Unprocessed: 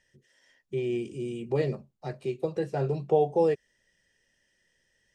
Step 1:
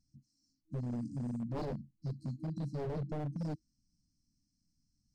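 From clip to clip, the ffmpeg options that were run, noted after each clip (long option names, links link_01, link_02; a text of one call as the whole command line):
ffmpeg -i in.wav -af "aemphasis=mode=reproduction:type=75fm,afftfilt=real='re*(1-between(b*sr/4096,320,4000))':imag='im*(1-between(b*sr/4096,320,4000))':win_size=4096:overlap=0.75,aeval=exprs='0.0211*(abs(mod(val(0)/0.0211+3,4)-2)-1)':channel_layout=same,volume=1.5dB" out.wav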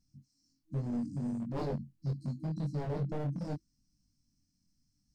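ffmpeg -i in.wav -af "flanger=delay=20:depth=2:speed=0.77,volume=5.5dB" out.wav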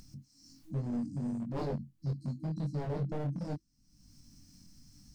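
ffmpeg -i in.wav -af "acompressor=mode=upward:threshold=-39dB:ratio=2.5,aeval=exprs='0.0473*(cos(1*acos(clip(val(0)/0.0473,-1,1)))-cos(1*PI/2))+0.000299*(cos(7*acos(clip(val(0)/0.0473,-1,1)))-cos(7*PI/2))':channel_layout=same" out.wav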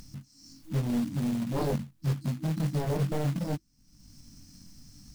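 ffmpeg -i in.wav -af "acrusher=bits=4:mode=log:mix=0:aa=0.000001,volume=6dB" out.wav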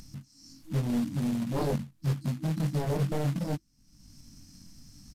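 ffmpeg -i in.wav -af "aresample=32000,aresample=44100" out.wav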